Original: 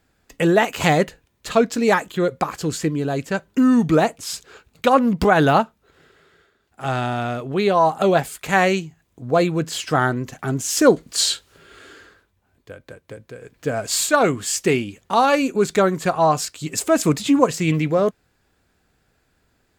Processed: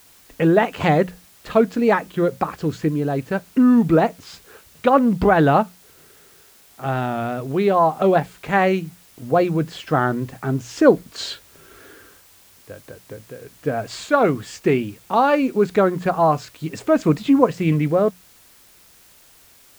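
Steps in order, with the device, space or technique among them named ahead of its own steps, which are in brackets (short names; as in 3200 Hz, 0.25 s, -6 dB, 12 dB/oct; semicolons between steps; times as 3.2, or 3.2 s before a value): cassette deck with a dirty head (tape spacing loss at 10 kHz 26 dB; wow and flutter; white noise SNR 31 dB); notches 60/120/180 Hz; gain +2 dB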